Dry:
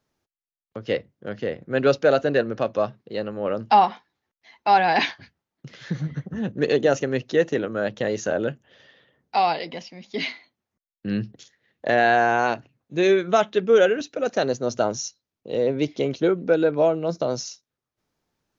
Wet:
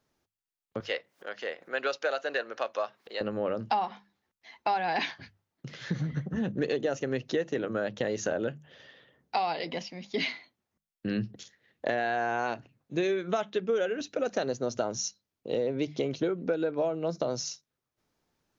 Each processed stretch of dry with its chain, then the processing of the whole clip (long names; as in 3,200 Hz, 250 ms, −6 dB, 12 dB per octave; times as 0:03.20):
0:00.80–0:03.21: high-pass filter 790 Hz + upward compression, threshold −39 dBFS
whole clip: mains-hum notches 50/100/150/200 Hz; downward compressor, threshold −26 dBFS